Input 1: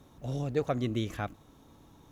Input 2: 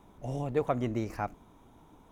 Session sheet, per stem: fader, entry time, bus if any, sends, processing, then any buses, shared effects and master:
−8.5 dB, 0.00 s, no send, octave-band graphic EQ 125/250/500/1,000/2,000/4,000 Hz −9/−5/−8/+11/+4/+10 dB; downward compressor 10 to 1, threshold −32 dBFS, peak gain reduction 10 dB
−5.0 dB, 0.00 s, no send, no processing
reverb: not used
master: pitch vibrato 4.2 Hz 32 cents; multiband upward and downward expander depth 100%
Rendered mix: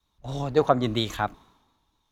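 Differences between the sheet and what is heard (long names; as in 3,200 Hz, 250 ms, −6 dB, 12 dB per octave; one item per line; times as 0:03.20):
stem 1 −8.5 dB → +3.5 dB
stem 2 −5.0 dB → +2.5 dB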